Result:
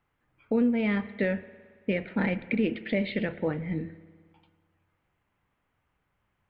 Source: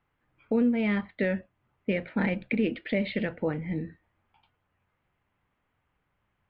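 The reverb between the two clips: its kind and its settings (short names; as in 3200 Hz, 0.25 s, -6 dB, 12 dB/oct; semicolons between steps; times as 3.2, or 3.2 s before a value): spring tank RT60 1.7 s, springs 55 ms, chirp 70 ms, DRR 15.5 dB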